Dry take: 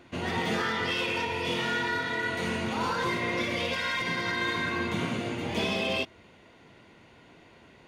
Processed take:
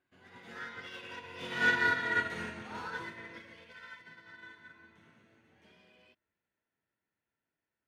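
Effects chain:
source passing by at 0:01.99, 18 m/s, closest 14 metres
parametric band 1,600 Hz +10 dB 0.48 octaves
expander for the loud parts 2.5 to 1, over −37 dBFS

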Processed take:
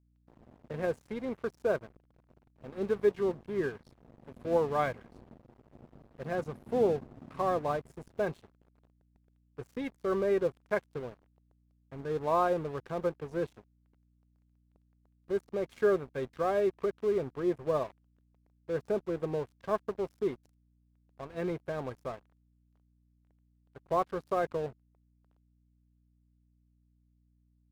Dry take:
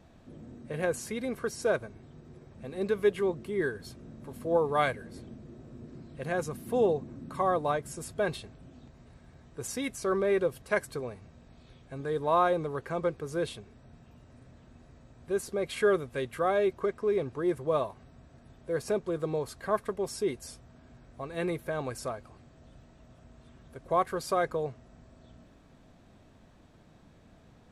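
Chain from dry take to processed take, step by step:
one scale factor per block 5 bits
low-pass filter 1,100 Hz 6 dB per octave
dead-zone distortion −45.5 dBFS
mains hum 60 Hz, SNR 34 dB

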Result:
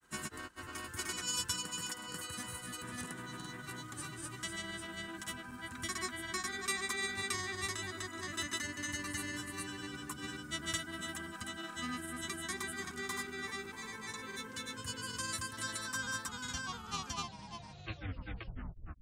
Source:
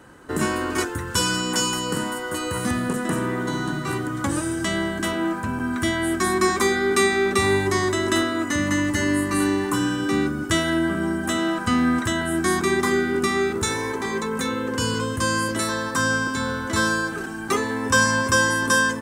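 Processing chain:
turntable brake at the end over 2.78 s
guitar amp tone stack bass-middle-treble 5-5-5
granular cloud, spray 419 ms, pitch spread up and down by 0 semitones
level −3 dB

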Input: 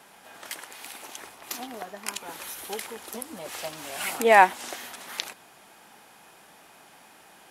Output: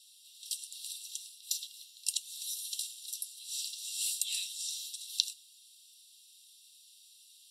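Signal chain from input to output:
dynamic equaliser 6,700 Hz, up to +5 dB, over −50 dBFS, Q 1.9
Chebyshev high-pass with heavy ripple 2,700 Hz, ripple 9 dB
convolution reverb, pre-delay 3 ms, DRR 9 dB

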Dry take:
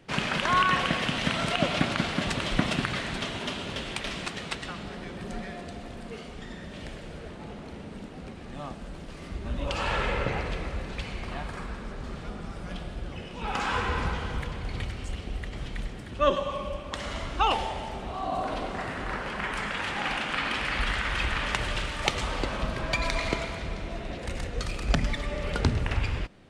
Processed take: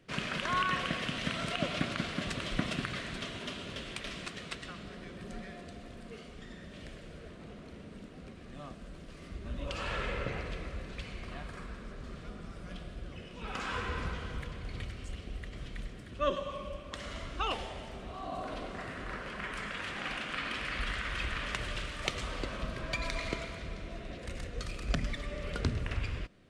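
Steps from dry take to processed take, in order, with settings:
parametric band 850 Hz −12.5 dB 0.21 octaves
level −7 dB

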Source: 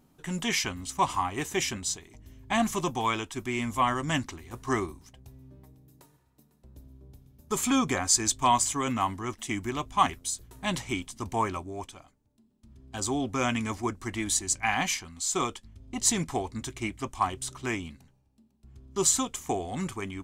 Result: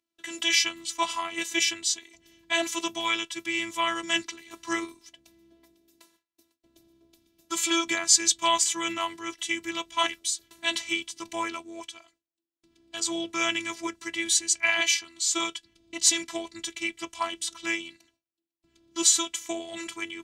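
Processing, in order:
noise gate with hold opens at −52 dBFS
phases set to zero 334 Hz
meter weighting curve D
level −1 dB

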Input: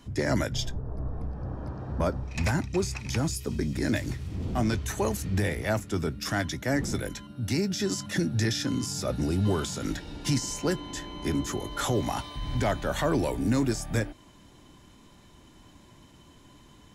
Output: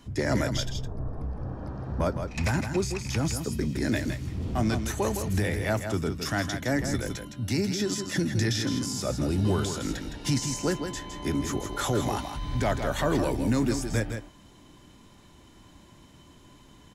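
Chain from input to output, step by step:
single-tap delay 162 ms −7.5 dB

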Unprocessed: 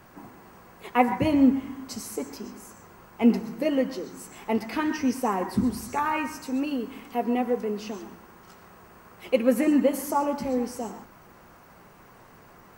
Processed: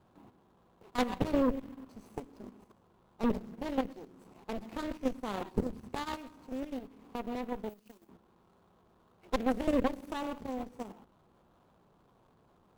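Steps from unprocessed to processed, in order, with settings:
running median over 25 samples
dynamic equaliser 640 Hz, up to −4 dB, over −36 dBFS, Q 0.74
harmonic generator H 2 −8 dB, 6 −10 dB, 8 −37 dB, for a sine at −9.5 dBFS
output level in coarse steps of 10 dB
0:07.69–0:08.09: first-order pre-emphasis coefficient 0.8
level −6 dB

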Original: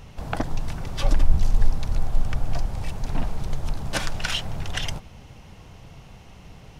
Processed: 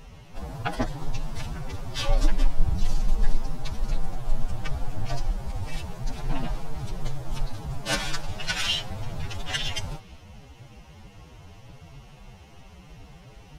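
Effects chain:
dynamic equaliser 3,900 Hz, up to +3 dB, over −46 dBFS, Q 0.89
phase-vocoder stretch with locked phases 2×
level −1 dB

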